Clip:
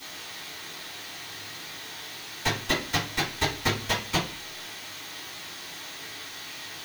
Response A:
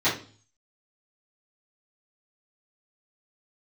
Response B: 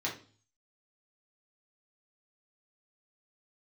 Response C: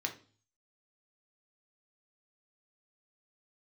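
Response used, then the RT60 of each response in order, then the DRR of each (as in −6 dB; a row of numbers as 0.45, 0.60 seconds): A; 0.40, 0.40, 0.40 seconds; −14.5, −4.5, 2.5 decibels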